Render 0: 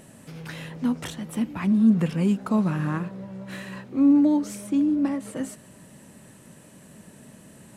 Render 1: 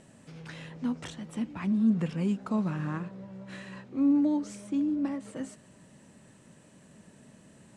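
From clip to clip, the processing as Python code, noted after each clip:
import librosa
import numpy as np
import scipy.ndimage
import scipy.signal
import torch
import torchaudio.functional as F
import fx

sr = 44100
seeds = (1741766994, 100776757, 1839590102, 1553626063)

y = scipy.signal.sosfilt(scipy.signal.butter(4, 8600.0, 'lowpass', fs=sr, output='sos'), x)
y = y * librosa.db_to_amplitude(-6.5)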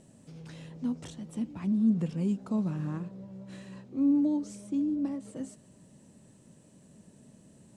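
y = fx.peak_eq(x, sr, hz=1700.0, db=-10.5, octaves=2.2)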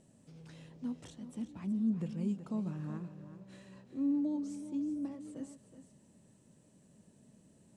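y = x + 10.0 ** (-11.5 / 20.0) * np.pad(x, (int(375 * sr / 1000.0), 0))[:len(x)]
y = y * librosa.db_to_amplitude(-7.0)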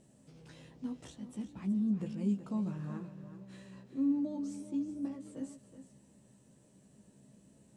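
y = fx.doubler(x, sr, ms=15.0, db=-5.0)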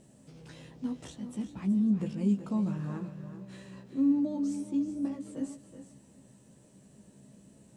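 y = x + 10.0 ** (-16.0 / 20.0) * np.pad(x, (int(396 * sr / 1000.0), 0))[:len(x)]
y = y * librosa.db_to_amplitude(5.0)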